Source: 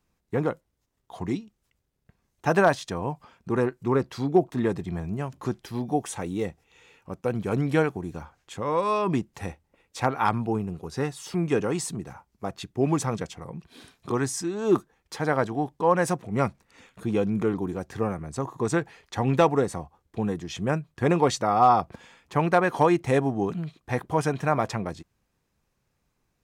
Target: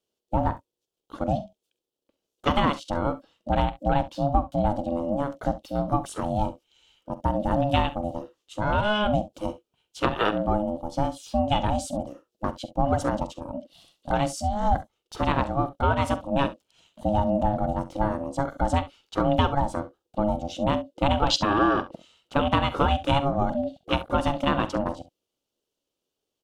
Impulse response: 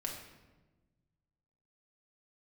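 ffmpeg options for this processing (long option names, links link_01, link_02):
-filter_complex "[0:a]afwtdn=0.0178,aeval=exprs='val(0)*sin(2*PI*420*n/s)':channel_layout=same,acompressor=threshold=-26dB:ratio=3,highshelf=frequency=2500:width_type=q:width=3:gain=6.5,asplit=2[link_01][link_02];[link_02]aecho=0:1:45|67:0.168|0.141[link_03];[link_01][link_03]amix=inputs=2:normalize=0,volume=7.5dB"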